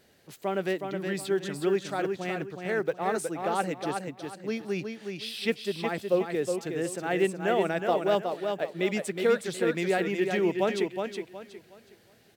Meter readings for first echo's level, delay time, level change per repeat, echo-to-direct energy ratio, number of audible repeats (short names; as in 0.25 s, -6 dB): -5.5 dB, 0.367 s, -11.0 dB, -5.0 dB, 3